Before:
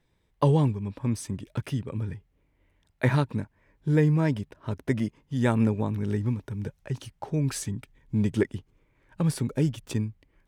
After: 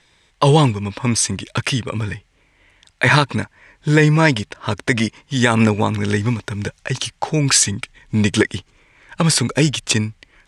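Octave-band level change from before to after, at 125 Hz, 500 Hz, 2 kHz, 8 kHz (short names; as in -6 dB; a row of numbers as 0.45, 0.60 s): +7.0, +9.5, +18.0, +21.5 dB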